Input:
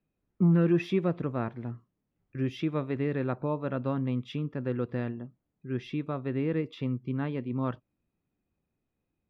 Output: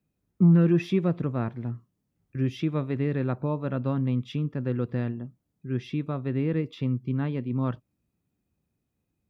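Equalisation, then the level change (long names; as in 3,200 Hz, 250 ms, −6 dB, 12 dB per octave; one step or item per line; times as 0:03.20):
high-pass filter 51 Hz
bass and treble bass +6 dB, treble +5 dB
0.0 dB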